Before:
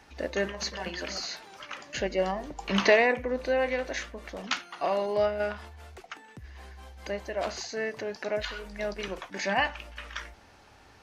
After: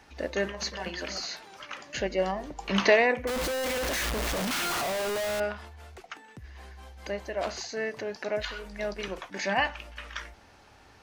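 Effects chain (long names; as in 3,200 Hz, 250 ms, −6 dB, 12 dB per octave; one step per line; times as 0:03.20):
0:03.27–0:05.40: sign of each sample alone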